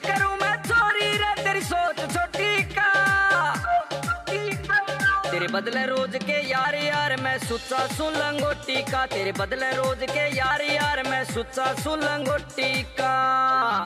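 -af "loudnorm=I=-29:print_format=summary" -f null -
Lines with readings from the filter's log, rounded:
Input Integrated:    -23.4 LUFS
Input True Peak:     -10.2 dBTP
Input LRA:             2.5 LU
Input Threshold:     -33.4 LUFS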